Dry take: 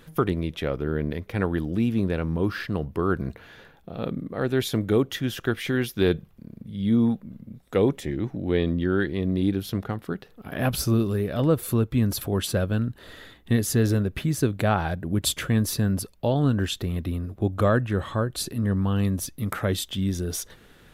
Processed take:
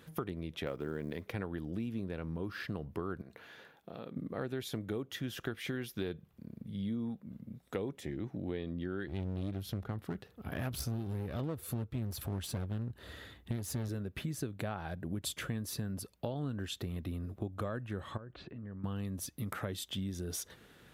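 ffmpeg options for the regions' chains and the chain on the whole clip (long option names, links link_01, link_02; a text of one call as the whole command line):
ffmpeg -i in.wav -filter_complex "[0:a]asettb=1/sr,asplit=3[link_01][link_02][link_03];[link_01]atrim=end=0.664[link_04];[link_02]atrim=start=0.66:end=1.31,asetpts=PTS-STARTPTS,afade=type=in:duration=0.004:curve=qsin,afade=type=out:start_time=0.646:duration=0.004:curve=qsin,highpass=frequency=170:poles=1,acontrast=28,acrusher=bits=9:mode=log:mix=0:aa=0.000001[link_05];[link_03]atrim=start=1.306[link_06];[link_04][link_05]acrossfade=duration=0.004:curve1=hsin:curve2=qsin[link_07];[link_07][link_06]acrossfade=duration=0.004:curve1=qsin:curve2=hsin,asettb=1/sr,asplit=3[link_08][link_09][link_10];[link_08]atrim=end=3.214[link_11];[link_09]atrim=start=3.21:end=4.16,asetpts=PTS-STARTPTS,afade=type=in:duration=0.004:curve=qsin,afade=type=out:start_time=0.946:duration=0.004:curve=qsin,acompressor=threshold=-32dB:ratio=10:attack=3.2:release=140:knee=1:detection=peak,highpass=frequency=290:poles=1[link_12];[link_10]atrim=start=4.156[link_13];[link_11][link_12]acrossfade=duration=0.004:curve1=hsin:curve2=qsin[link_14];[link_14][link_13]acrossfade=duration=0.004:curve1=qsin:curve2=hsin,asettb=1/sr,asplit=3[link_15][link_16][link_17];[link_15]atrim=end=9.074[link_18];[link_16]atrim=start=9.07:end=13.89,asetpts=PTS-STARTPTS,afade=type=in:duration=0.004:curve=qsin,afade=type=out:start_time=4.816:duration=0.004:curve=qsin,equalizer=frequency=73:width=1.2:gain=11.5,aeval=exprs='clip(val(0),-1,0.0447)':channel_layout=same[link_19];[link_17]atrim=start=13.886[link_20];[link_18][link_19]acrossfade=duration=0.004:curve1=hsin:curve2=qsin[link_21];[link_21][link_20]acrossfade=duration=0.004:curve1=qsin:curve2=hsin,asettb=1/sr,asplit=3[link_22][link_23][link_24];[link_22]atrim=end=18.174[link_25];[link_23]atrim=start=18.17:end=18.84,asetpts=PTS-STARTPTS,afade=type=in:duration=0.004:curve=qsin,afade=type=out:start_time=0.666:duration=0.004:curve=qsin,lowpass=frequency=2600:width=0.5412,lowpass=frequency=2600:width=1.3066,acompressor=threshold=-38dB:ratio=5:attack=3.2:release=140:knee=1:detection=peak[link_26];[link_24]atrim=start=18.836[link_27];[link_25][link_26]acrossfade=duration=0.004:curve1=hsin:curve2=qsin[link_28];[link_28][link_27]acrossfade=duration=0.004:curve1=qsin:curve2=hsin,highpass=63,acompressor=threshold=-29dB:ratio=6,volume=-5.5dB" out.wav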